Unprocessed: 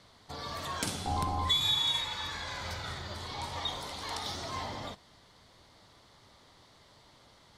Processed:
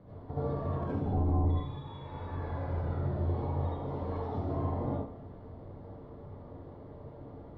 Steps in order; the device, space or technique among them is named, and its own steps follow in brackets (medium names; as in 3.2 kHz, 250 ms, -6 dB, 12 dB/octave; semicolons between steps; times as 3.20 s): television next door (compression 3:1, threshold -45 dBFS, peak gain reduction 15 dB; low-pass 500 Hz 12 dB/octave; reverberation RT60 0.55 s, pre-delay 65 ms, DRR -8 dB); trim +8.5 dB